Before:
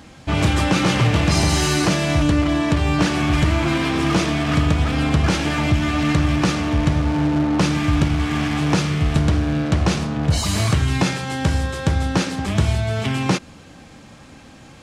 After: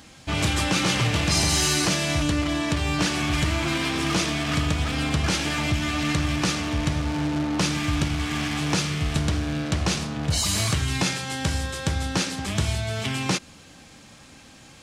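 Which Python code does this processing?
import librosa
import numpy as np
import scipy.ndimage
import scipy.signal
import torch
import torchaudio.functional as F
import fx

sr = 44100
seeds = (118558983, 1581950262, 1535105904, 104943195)

y = fx.high_shelf(x, sr, hz=2300.0, db=10.0)
y = F.gain(torch.from_numpy(y), -7.0).numpy()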